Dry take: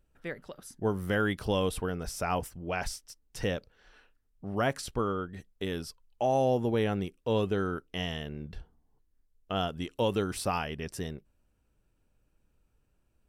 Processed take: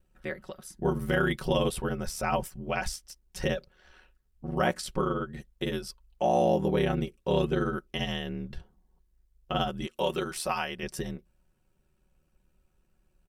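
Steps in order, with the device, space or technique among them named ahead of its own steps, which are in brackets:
0:09.87–0:10.83: low-shelf EQ 270 Hz −11.5 dB
ring-modulated robot voice (ring modulation 38 Hz; comb filter 5.4 ms)
level +3.5 dB

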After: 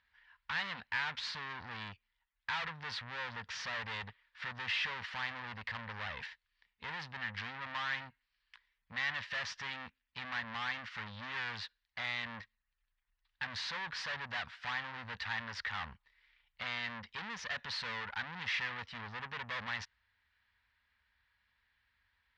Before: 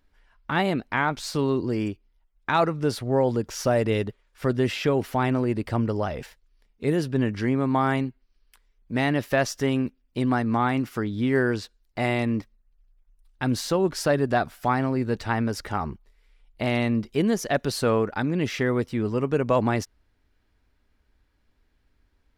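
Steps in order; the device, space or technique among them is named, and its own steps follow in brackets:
scooped metal amplifier (tube saturation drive 35 dB, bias 0.7; loudspeaker in its box 110–4,000 Hz, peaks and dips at 130 Hz −6 dB, 240 Hz +4 dB, 370 Hz −8 dB, 650 Hz −6 dB, 980 Hz +5 dB, 1,800 Hz +8 dB; guitar amp tone stack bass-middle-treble 10-0-10)
level +7 dB

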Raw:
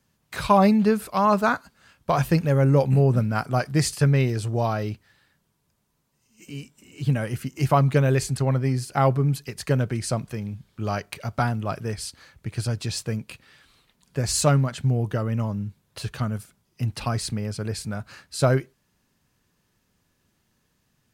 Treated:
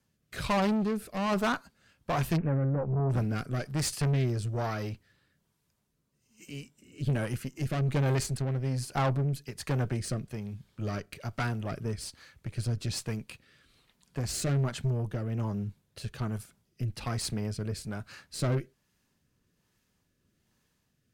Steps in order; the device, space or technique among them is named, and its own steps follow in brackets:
overdriven rotary cabinet (tube saturation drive 23 dB, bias 0.55; rotating-speaker cabinet horn 1.2 Hz)
0:02.36–0:03.09: low-pass filter 2,200 Hz → 1,100 Hz 24 dB per octave

